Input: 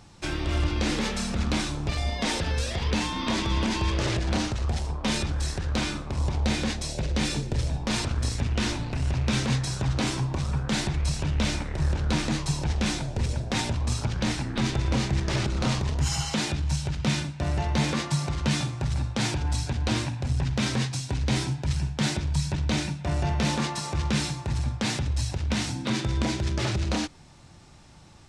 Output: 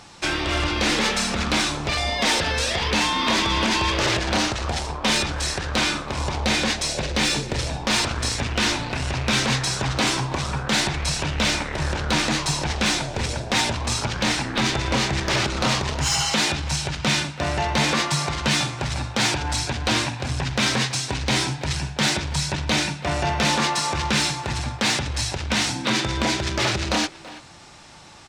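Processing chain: overdrive pedal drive 14 dB, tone 7.5 kHz, clips at -11.5 dBFS; speakerphone echo 330 ms, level -15 dB; trim +2.5 dB

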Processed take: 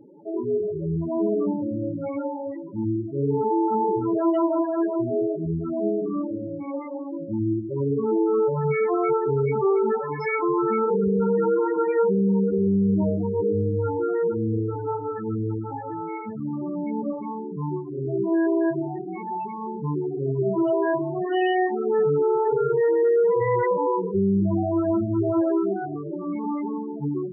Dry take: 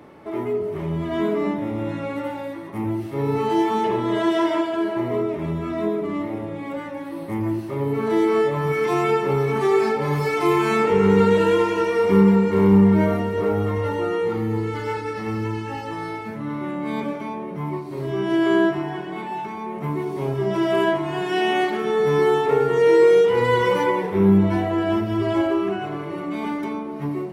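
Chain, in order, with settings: 9.98–10.39 s: RIAA curve recording; loudest bins only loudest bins 8; peak limiter -14.5 dBFS, peak gain reduction 8.5 dB

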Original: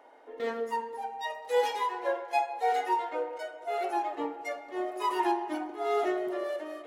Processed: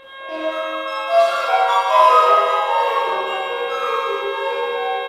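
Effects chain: median filter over 5 samples; Doppler pass-by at 2.88 s, 10 m/s, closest 9.1 m; bass shelf 490 Hz +9.5 dB; de-hum 47.67 Hz, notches 7; mains buzz 400 Hz, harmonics 7, -47 dBFS -4 dB/octave; bit crusher 12-bit; Schroeder reverb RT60 2.5 s, combs from 30 ms, DRR -9 dB; speed mistake 33 rpm record played at 45 rpm; resampled via 32 kHz; trim +3.5 dB; Opus 24 kbps 48 kHz

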